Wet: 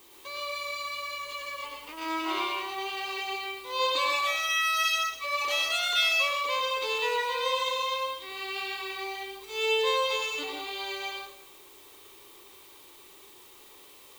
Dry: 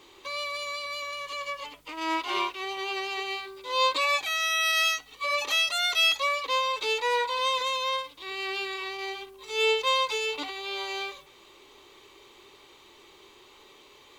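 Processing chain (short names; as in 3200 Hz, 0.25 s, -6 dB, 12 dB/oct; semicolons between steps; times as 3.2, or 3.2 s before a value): added noise blue -53 dBFS; plate-style reverb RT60 0.72 s, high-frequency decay 0.85×, pre-delay 85 ms, DRR 0 dB; gain -4.5 dB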